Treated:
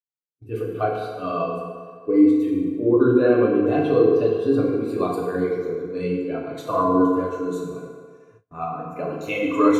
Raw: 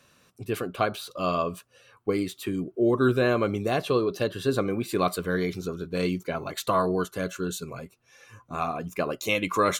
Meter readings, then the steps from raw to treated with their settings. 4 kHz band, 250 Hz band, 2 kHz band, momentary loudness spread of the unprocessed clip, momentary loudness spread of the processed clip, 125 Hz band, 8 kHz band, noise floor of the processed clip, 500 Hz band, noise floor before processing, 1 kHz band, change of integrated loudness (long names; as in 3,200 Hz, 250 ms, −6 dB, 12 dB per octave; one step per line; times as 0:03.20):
can't be measured, +9.0 dB, −1.5 dB, 11 LU, 14 LU, +1.0 dB, below −10 dB, −60 dBFS, +6.0 dB, −63 dBFS, +2.5 dB, +6.0 dB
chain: feedback delay network reverb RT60 2.7 s, low-frequency decay 0.75×, high-frequency decay 0.65×, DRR −5 dB
noise gate with hold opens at −29 dBFS
every bin expanded away from the loudest bin 1.5 to 1